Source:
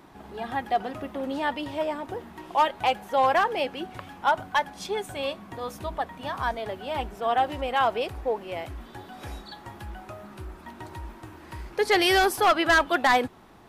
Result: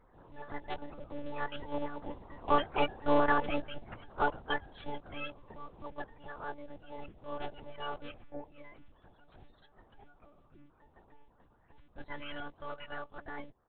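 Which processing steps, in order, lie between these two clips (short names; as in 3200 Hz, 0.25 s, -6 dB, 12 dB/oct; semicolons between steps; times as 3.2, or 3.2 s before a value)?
bin magnitudes rounded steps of 30 dB; Doppler pass-by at 3, 12 m/s, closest 17 m; monotone LPC vocoder at 8 kHz 290 Hz; harmoniser -12 st -5 dB, -4 st -17 dB; gain -5.5 dB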